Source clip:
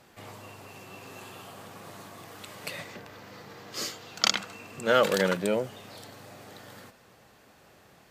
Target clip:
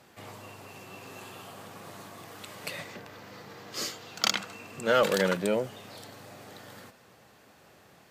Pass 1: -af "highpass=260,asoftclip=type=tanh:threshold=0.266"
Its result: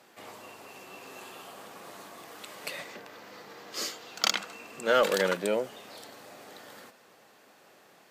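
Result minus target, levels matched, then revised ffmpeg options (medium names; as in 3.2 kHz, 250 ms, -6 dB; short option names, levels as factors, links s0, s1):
125 Hz band -7.5 dB
-af "highpass=69,asoftclip=type=tanh:threshold=0.266"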